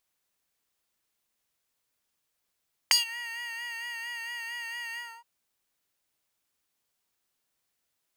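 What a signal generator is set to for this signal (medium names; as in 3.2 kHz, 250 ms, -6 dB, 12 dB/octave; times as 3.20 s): synth patch with vibrato A#5, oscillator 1 square, oscillator 2 sine, interval +12 st, oscillator 2 level -7 dB, sub -9 dB, noise -24 dB, filter highpass, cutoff 1 kHz, Q 3.7, filter envelope 2.5 oct, filter decay 0.18 s, filter sustain 40%, attack 1.8 ms, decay 0.13 s, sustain -23.5 dB, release 0.27 s, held 2.05 s, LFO 4.4 Hz, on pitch 41 cents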